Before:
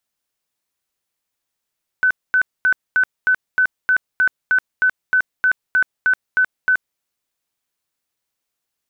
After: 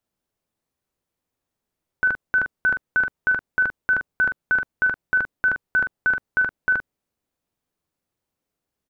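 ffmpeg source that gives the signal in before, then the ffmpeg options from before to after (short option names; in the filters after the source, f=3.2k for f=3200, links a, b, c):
-f lavfi -i "aevalsrc='0.266*sin(2*PI*1510*mod(t,0.31))*lt(mod(t,0.31),115/1510)':d=4.96:s=44100"
-filter_complex "[0:a]tiltshelf=f=930:g=8,asplit=2[a][b];[b]aecho=0:1:12|44:0.158|0.422[c];[a][c]amix=inputs=2:normalize=0"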